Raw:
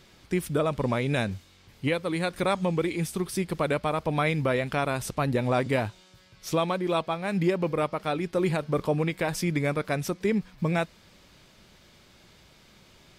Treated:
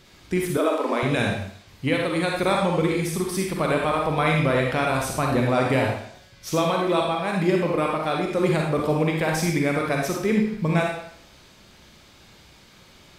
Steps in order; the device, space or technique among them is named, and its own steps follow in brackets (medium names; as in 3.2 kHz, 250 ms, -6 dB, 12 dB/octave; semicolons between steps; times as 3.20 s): bathroom (reverberation RT60 0.65 s, pre-delay 38 ms, DRR -1 dB); 0.57–1.03 s: steep high-pass 250 Hz 96 dB/octave; trim +2 dB